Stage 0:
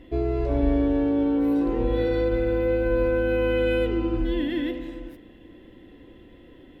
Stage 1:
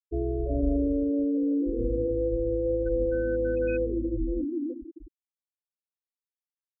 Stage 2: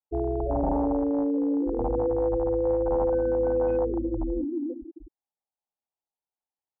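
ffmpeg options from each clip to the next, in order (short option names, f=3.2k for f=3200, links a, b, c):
-af "afftfilt=real='re*gte(hypot(re,im),0.158)':imag='im*gte(hypot(re,im),0.158)':win_size=1024:overlap=0.75,volume=-3.5dB"
-af "acontrast=62,aeval=exprs='0.188*(abs(mod(val(0)/0.188+3,4)-2)-1)':c=same,lowpass=f=820:t=q:w=4.9,volume=-7dB"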